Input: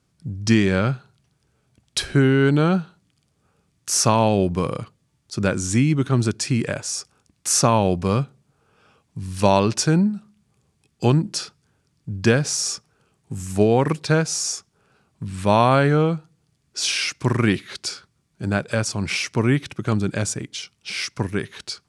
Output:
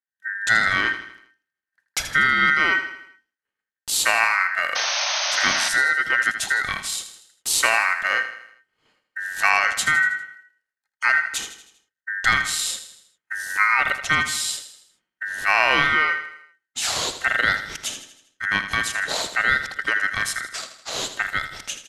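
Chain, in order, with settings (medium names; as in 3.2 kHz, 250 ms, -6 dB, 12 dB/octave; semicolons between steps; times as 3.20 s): expander -49 dBFS; in parallel at -3 dB: compression, threshold -26 dBFS, peak gain reduction 14.5 dB; on the sum: ring modulator 1.7 kHz; painted sound noise, 4.75–5.69 s, 550–6500 Hz -23 dBFS; feedback delay 80 ms, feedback 50%, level -11 dB; trim -1 dB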